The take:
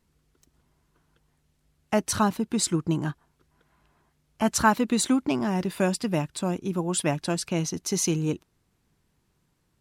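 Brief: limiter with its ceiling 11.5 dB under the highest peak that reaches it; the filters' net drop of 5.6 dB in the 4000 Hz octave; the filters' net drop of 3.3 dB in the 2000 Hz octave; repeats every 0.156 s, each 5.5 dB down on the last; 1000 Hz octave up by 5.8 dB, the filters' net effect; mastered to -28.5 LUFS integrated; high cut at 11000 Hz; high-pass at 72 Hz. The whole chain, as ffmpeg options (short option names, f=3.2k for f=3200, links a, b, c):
-af "highpass=72,lowpass=11k,equalizer=f=1k:t=o:g=9,equalizer=f=2k:t=o:g=-8.5,equalizer=f=4k:t=o:g=-5.5,alimiter=limit=-16.5dB:level=0:latency=1,aecho=1:1:156|312|468|624|780|936|1092:0.531|0.281|0.149|0.079|0.0419|0.0222|0.0118,volume=-2dB"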